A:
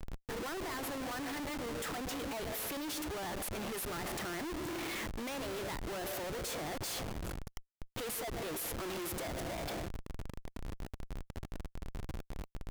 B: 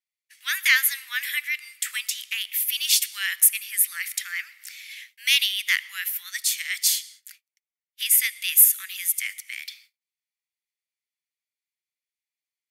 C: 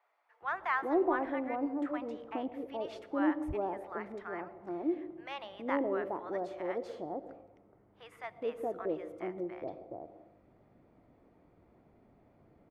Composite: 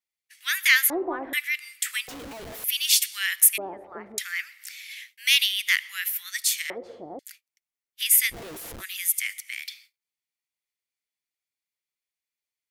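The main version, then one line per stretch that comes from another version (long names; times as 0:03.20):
B
0:00.90–0:01.33: punch in from C
0:02.08–0:02.64: punch in from A
0:03.58–0:04.18: punch in from C
0:06.70–0:07.19: punch in from C
0:08.32–0:08.81: punch in from A, crossfade 0.06 s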